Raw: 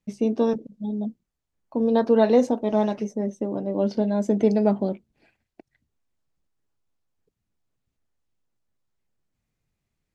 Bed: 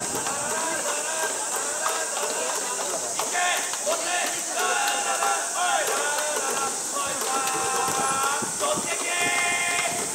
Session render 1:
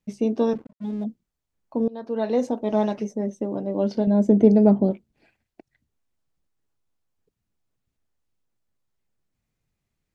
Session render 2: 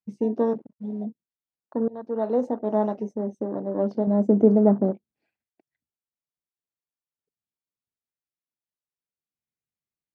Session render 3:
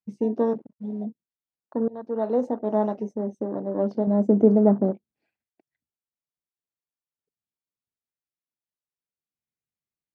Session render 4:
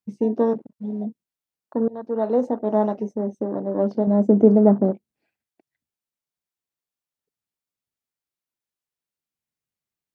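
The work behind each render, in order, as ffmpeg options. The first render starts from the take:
-filter_complex "[0:a]asettb=1/sr,asplit=3[a][b][c];[a]atrim=end=0.554[d];[b]atrim=start=0.55:end=1.04,asetpts=PTS-STARTPTS,afade=t=in:d=0.004:c=qsin,afade=t=out:st=0.486:d=0.004:c=qsin,aeval=exprs='sgn(val(0))*max(abs(val(0))-0.00398,0)':c=same[e];[c]atrim=start=1.036[f];[d][e]acrossfade=d=0.004:c1=hsin:c2=qsin[g];[g][f]acrossfade=d=0.004:c1=qsin:c2=hsin,asettb=1/sr,asplit=3[h][i][j];[h]atrim=end=4.074[k];[i]atrim=start=4.07:end=4.91,asetpts=PTS-STARTPTS,afade=t=in:d=0.004:c=qsin,afade=t=out:st=0.836:d=0.004:c=qsin,tiltshelf=f=770:g=7[l];[j]atrim=start=4.906[m];[k][l]acrossfade=d=0.004:c1=hsin:c2=qsin[n];[n][m]acrossfade=d=0.004:c1=qsin:c2=hsin,asplit=2[o][p];[o]atrim=end=1.88,asetpts=PTS-STARTPTS,afade=t=out:st=1.876:d=0.004:c=hsin:silence=0.0630957[q];[p]atrim=start=1.88,asetpts=PTS-STARTPTS,afade=t=in:d=0.86:silence=0.0630957[r];[q][r]concat=n=2:v=0:a=1"
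-af "afwtdn=0.0178,highpass=f=190:p=1"
-af anull
-af "volume=3dB"

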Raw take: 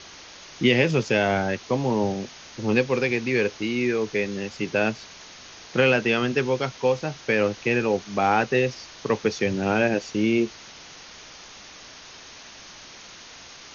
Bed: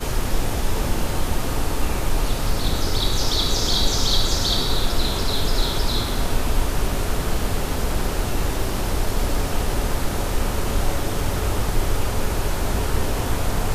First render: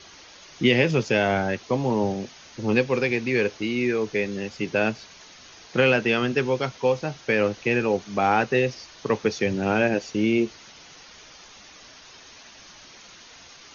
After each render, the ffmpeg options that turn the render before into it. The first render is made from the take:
-af "afftdn=nr=6:nf=-45"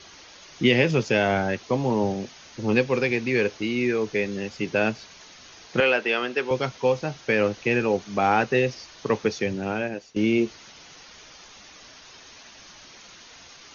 -filter_complex "[0:a]asettb=1/sr,asplit=3[a][b][c];[a]atrim=end=5.804[d];[b]atrim=start=5.8:end=6.51,asetpts=PTS-STARTPTS,afade=t=in:d=0.004:c=qsin,afade=t=out:st=0.706:d=0.004:c=qsin,highpass=410,lowpass=5.1k[e];[c]atrim=start=6.506[f];[d][e]acrossfade=d=0.004:c1=hsin:c2=qsin[g];[g][f]acrossfade=d=0.004:c1=qsin:c2=hsin,asplit=2[h][i];[h]atrim=end=10.16,asetpts=PTS-STARTPTS,afade=t=out:st=9.19:d=0.97:silence=0.16788[j];[i]atrim=start=10.16,asetpts=PTS-STARTPTS,afade=t=in:d=0.004:c=hsin:silence=0.16788[k];[j][k]concat=n=2:v=0:a=1"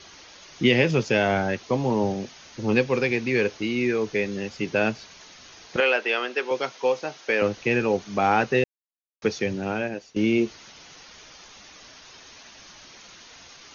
-filter_complex "[0:a]asettb=1/sr,asplit=3[a][b][c];[a]atrim=end=5.764[d];[b]atrim=start=5.76:end=7.42,asetpts=PTS-STARTPTS,afade=t=in:d=0.004:c=qsin,afade=t=out:st=1.656:d=0.004:c=qsin,highpass=350[e];[c]atrim=start=7.416[f];[d][e]acrossfade=d=0.004:c1=hsin:c2=qsin[g];[g][f]acrossfade=d=0.004:c1=qsin:c2=hsin,asplit=3[h][i][j];[h]atrim=end=8.64,asetpts=PTS-STARTPTS,afade=t=out:st=8.636:d=0.004:c=hsin[k];[i]atrim=start=8.64:end=9.22,asetpts=PTS-STARTPTS,volume=0[l];[j]atrim=start=9.22,asetpts=PTS-STARTPTS,afade=t=in:d=0.004:c=hsin[m];[k][l][m]concat=n=3:v=0:a=1"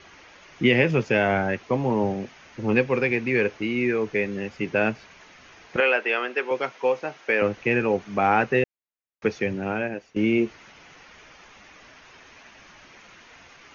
-af "highshelf=f=3.1k:t=q:w=1.5:g=-8"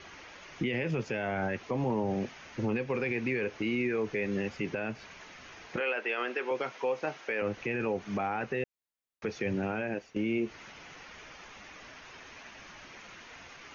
-af "acompressor=threshold=-24dB:ratio=6,alimiter=limit=-22.5dB:level=0:latency=1:release=16"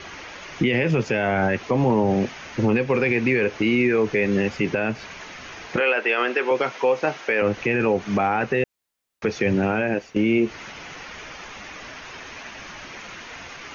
-af "volume=11dB"

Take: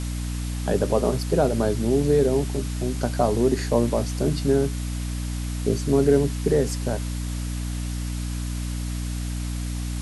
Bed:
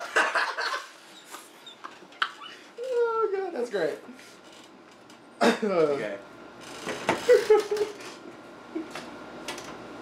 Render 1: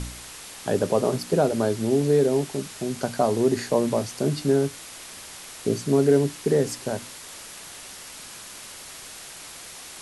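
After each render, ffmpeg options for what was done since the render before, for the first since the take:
-af "bandreject=f=60:t=h:w=4,bandreject=f=120:t=h:w=4,bandreject=f=180:t=h:w=4,bandreject=f=240:t=h:w=4,bandreject=f=300:t=h:w=4"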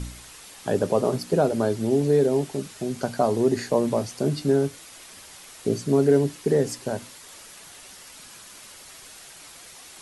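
-af "afftdn=nr=6:nf=-42"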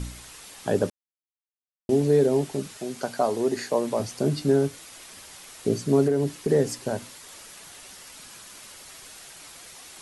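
-filter_complex "[0:a]asettb=1/sr,asplit=3[a][b][c];[a]atrim=end=2.774[d];[b]atrim=start=2.77:end=4,asetpts=PTS-STARTPTS,afade=t=in:d=0.004:c=qsin,afade=t=out:st=1.226:d=0.004:c=qsin,highpass=f=400:p=1[e];[c]atrim=start=3.996[f];[d][e]acrossfade=d=0.004:c1=hsin:c2=qsin[g];[g][f]acrossfade=d=0.004:c1=qsin:c2=hsin,asettb=1/sr,asplit=3[h][i][j];[h]atrim=end=6.074[k];[i]atrim=start=6.07:end=6.5,asetpts=PTS-STARTPTS,afade=t=in:d=0.004:c=qsin,afade=t=out:st=0.426:d=0.004:c=qsin,acompressor=threshold=-18dB:ratio=6:attack=3.2:release=140:knee=1:detection=peak[l];[j]atrim=start=6.496[m];[k][l]acrossfade=d=0.004:c1=hsin:c2=qsin[n];[n][m]acrossfade=d=0.004:c1=qsin:c2=hsin,asplit=3[o][p][q];[o]atrim=end=0.9,asetpts=PTS-STARTPTS,afade=t=out:st=0.896:d=0.004:c=hsin[r];[p]atrim=start=0.9:end=1.89,asetpts=PTS-STARTPTS,volume=0[s];[q]atrim=start=1.89,asetpts=PTS-STARTPTS,afade=t=in:d=0.004:c=hsin[t];[r][s][t]concat=n=3:v=0:a=1"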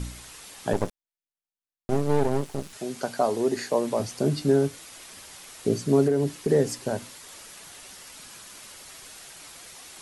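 -filter_complex "[0:a]asettb=1/sr,asplit=3[a][b][c];[a]atrim=end=0.734[d];[b]atrim=start=0.73:end=2.73,asetpts=PTS-STARTPTS,afade=t=in:d=0.004:c=qsin,afade=t=out:st=1.996:d=0.004:c=qsin,aeval=exprs='max(val(0),0)':c=same[e];[c]atrim=start=2.726[f];[d][e]acrossfade=d=0.004:c1=hsin:c2=qsin[g];[g][f]acrossfade=d=0.004:c1=qsin:c2=hsin"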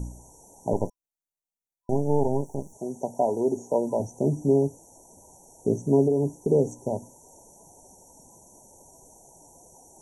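-filter_complex "[0:a]acrossover=split=5400[a][b];[b]acompressor=threshold=-56dB:ratio=4:attack=1:release=60[c];[a][c]amix=inputs=2:normalize=0,afftfilt=real='re*(1-between(b*sr/4096,1000,5600))':imag='im*(1-between(b*sr/4096,1000,5600))':win_size=4096:overlap=0.75"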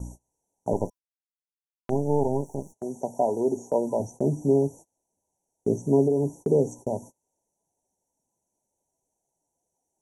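-af "lowshelf=f=64:g=-5,agate=range=-28dB:threshold=-41dB:ratio=16:detection=peak"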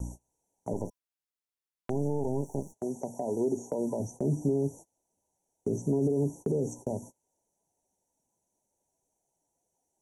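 -filter_complex "[0:a]alimiter=limit=-18dB:level=0:latency=1:release=39,acrossover=split=420|3000[a][b][c];[b]acompressor=threshold=-37dB:ratio=6[d];[a][d][c]amix=inputs=3:normalize=0"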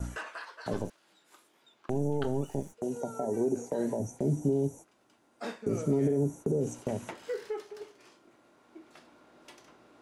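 -filter_complex "[1:a]volume=-17dB[a];[0:a][a]amix=inputs=2:normalize=0"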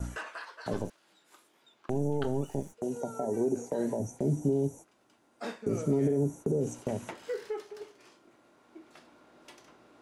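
-af anull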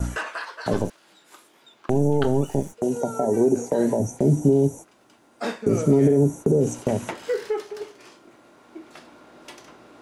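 -af "volume=10dB"

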